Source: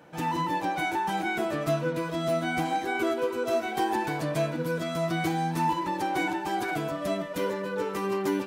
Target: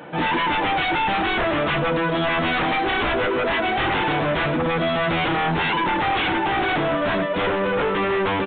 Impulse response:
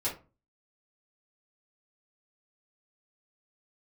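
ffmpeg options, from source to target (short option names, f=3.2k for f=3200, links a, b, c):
-af "highpass=f=140:p=1,aeval=exprs='0.158*sin(PI/2*4.47*val(0)/0.158)':c=same,aresample=8000,aresample=44100,volume=-2dB"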